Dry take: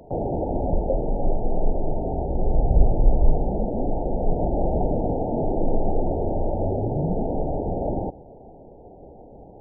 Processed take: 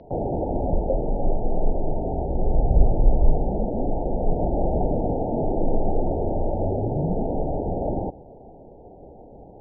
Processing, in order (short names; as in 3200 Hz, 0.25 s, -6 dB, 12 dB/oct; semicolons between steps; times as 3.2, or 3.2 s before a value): steep low-pass 4600 Hz